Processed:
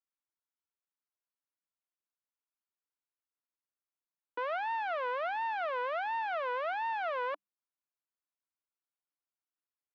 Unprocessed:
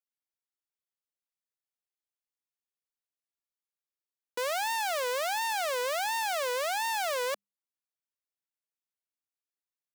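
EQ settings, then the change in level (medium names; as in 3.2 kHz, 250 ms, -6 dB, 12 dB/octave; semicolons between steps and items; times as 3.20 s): cabinet simulation 210–2900 Hz, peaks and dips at 300 Hz +9 dB, 650 Hz +4 dB, 1 kHz +8 dB, 1.4 kHz +7 dB; -7.0 dB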